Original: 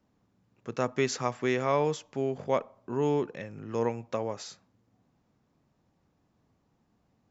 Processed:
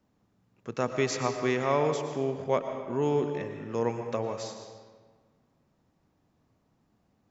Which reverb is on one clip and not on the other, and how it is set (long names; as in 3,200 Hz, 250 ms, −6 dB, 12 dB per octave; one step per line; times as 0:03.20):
comb and all-pass reverb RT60 1.5 s, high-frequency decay 0.75×, pre-delay 75 ms, DRR 6 dB